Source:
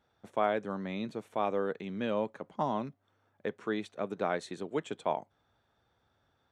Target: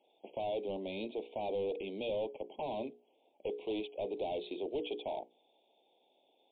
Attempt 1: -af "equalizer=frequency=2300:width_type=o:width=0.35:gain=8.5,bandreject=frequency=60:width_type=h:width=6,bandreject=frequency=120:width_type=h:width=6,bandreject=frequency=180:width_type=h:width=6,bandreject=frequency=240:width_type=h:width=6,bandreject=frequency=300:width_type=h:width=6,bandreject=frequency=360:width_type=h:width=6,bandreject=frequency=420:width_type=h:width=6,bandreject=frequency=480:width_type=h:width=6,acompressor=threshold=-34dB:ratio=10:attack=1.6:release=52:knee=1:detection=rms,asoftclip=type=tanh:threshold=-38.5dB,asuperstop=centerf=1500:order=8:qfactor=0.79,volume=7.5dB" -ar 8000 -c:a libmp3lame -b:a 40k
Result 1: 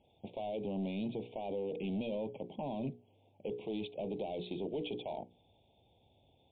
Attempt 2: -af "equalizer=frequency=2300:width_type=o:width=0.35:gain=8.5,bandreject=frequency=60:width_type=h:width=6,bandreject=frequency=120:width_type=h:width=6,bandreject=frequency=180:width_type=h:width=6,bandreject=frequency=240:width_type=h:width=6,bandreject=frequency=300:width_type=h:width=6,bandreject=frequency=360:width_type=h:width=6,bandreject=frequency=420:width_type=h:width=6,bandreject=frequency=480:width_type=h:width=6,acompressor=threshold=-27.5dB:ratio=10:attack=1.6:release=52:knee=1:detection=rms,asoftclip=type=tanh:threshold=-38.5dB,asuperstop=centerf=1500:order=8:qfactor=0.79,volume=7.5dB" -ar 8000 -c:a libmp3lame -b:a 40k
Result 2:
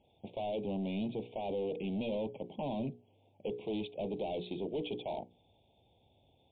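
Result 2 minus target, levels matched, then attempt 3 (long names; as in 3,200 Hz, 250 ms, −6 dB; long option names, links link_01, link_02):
250 Hz band +5.0 dB
-af "highpass=frequency=320:width=0.5412,highpass=frequency=320:width=1.3066,equalizer=frequency=2300:width_type=o:width=0.35:gain=8.5,bandreject=frequency=60:width_type=h:width=6,bandreject=frequency=120:width_type=h:width=6,bandreject=frequency=180:width_type=h:width=6,bandreject=frequency=240:width_type=h:width=6,bandreject=frequency=300:width_type=h:width=6,bandreject=frequency=360:width_type=h:width=6,bandreject=frequency=420:width_type=h:width=6,bandreject=frequency=480:width_type=h:width=6,acompressor=threshold=-27.5dB:ratio=10:attack=1.6:release=52:knee=1:detection=rms,asoftclip=type=tanh:threshold=-38.5dB,asuperstop=centerf=1500:order=8:qfactor=0.79,volume=7.5dB" -ar 8000 -c:a libmp3lame -b:a 40k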